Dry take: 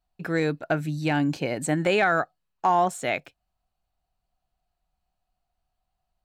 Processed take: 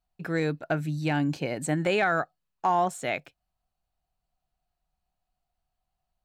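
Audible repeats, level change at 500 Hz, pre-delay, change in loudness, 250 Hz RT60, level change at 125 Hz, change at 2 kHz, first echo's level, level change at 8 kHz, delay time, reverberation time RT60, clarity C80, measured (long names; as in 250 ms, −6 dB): no echo audible, −3.0 dB, no reverb audible, −2.5 dB, no reverb audible, −1.0 dB, −3.0 dB, no echo audible, −3.0 dB, no echo audible, no reverb audible, no reverb audible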